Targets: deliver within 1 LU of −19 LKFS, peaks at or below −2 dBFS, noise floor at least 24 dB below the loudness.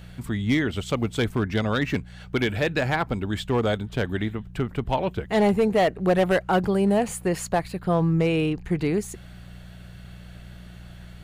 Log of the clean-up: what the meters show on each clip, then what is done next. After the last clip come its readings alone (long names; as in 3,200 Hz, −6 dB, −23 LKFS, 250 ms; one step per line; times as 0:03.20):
share of clipped samples 0.8%; peaks flattened at −14.0 dBFS; mains hum 60 Hz; hum harmonics up to 180 Hz; level of the hum −41 dBFS; integrated loudness −24.5 LKFS; sample peak −14.0 dBFS; target loudness −19.0 LKFS
→ clipped peaks rebuilt −14 dBFS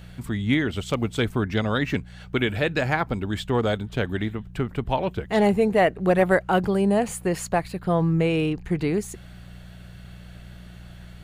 share of clipped samples 0.0%; mains hum 60 Hz; hum harmonics up to 120 Hz; level of the hum −42 dBFS
→ hum removal 60 Hz, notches 2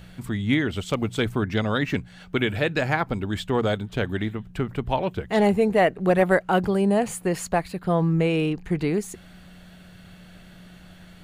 mains hum none found; integrated loudness −24.0 LKFS; sample peak −6.0 dBFS; target loudness −19.0 LKFS
→ level +5 dB
brickwall limiter −2 dBFS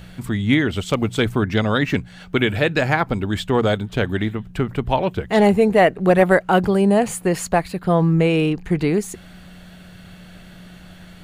integrated loudness −19.0 LKFS; sample peak −2.0 dBFS; background noise floor −43 dBFS